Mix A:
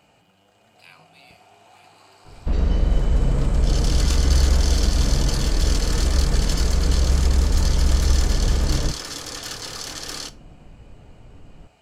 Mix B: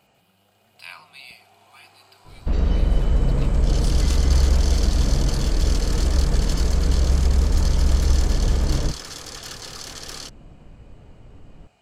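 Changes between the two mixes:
speech +9.5 dB; first sound: send off

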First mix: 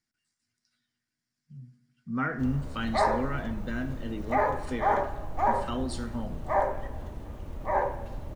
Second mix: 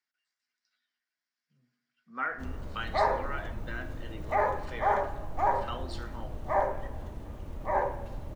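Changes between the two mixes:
speech: add BPF 660–4300 Hz; background: send -8.0 dB

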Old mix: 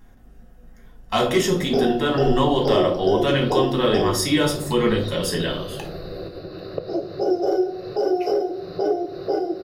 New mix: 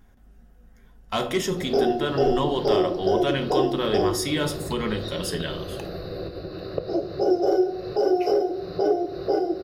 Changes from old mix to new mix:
speech: send -10.0 dB; master: add bell 62 Hz +12 dB 0.48 oct

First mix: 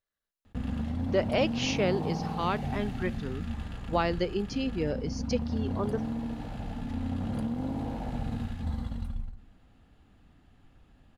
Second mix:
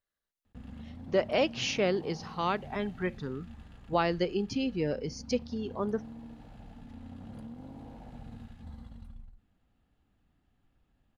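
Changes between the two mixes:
background -10.5 dB; reverb: off

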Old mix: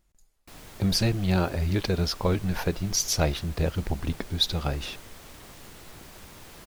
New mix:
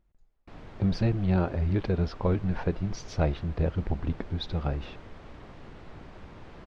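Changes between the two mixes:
background +3.5 dB; master: add tape spacing loss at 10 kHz 36 dB

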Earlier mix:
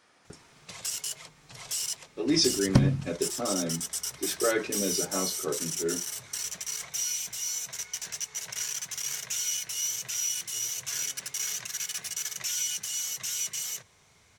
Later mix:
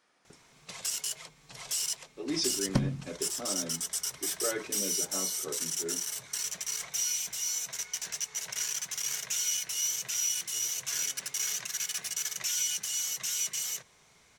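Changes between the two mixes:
speech -7.5 dB; second sound -4.5 dB; master: add bell 91 Hz -10 dB 0.76 oct

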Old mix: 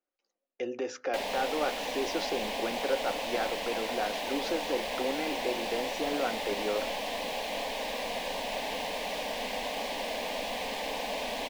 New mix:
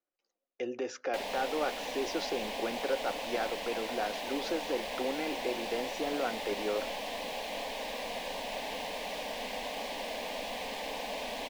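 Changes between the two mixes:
speech: send -7.0 dB; background -3.5 dB

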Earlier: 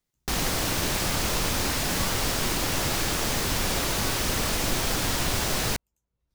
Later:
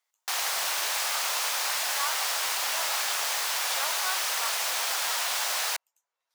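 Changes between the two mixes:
speech +8.0 dB; master: add HPF 710 Hz 24 dB/oct

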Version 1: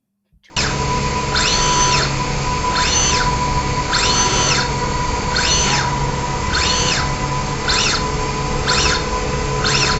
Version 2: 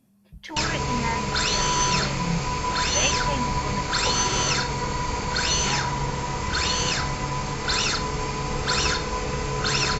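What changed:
speech +10.5 dB; background -7.5 dB

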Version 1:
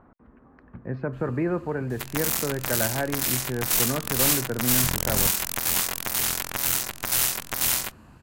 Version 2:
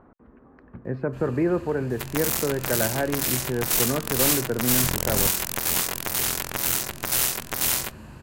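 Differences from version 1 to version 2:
first sound +8.5 dB; master: add bell 410 Hz +4.5 dB 1.1 oct

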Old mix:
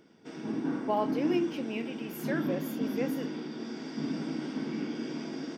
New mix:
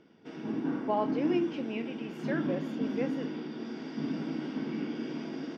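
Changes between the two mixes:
background: add bell 2900 Hz +4 dB 0.21 oct; master: add air absorption 130 m

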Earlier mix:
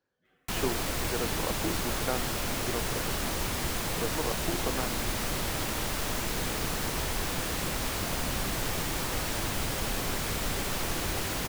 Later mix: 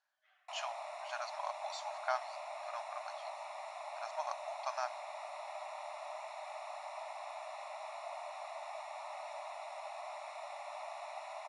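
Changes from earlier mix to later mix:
background: add running mean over 28 samples; master: add brick-wall FIR band-pass 580–11000 Hz

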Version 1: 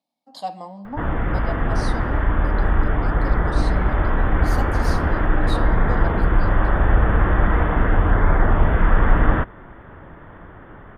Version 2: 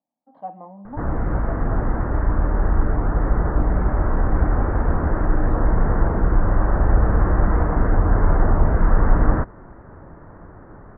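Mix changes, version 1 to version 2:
speech -3.0 dB; master: add Bessel low-pass 1100 Hz, order 6

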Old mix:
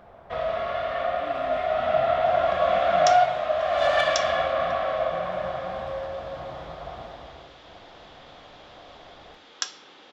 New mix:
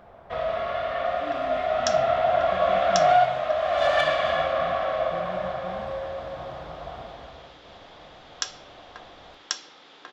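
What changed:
speech: send on; second sound: entry -1.20 s

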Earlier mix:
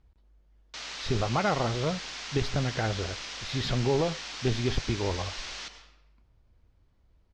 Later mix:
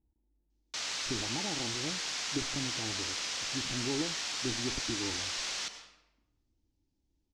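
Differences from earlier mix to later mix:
speech: add vocal tract filter u; master: remove air absorption 95 m

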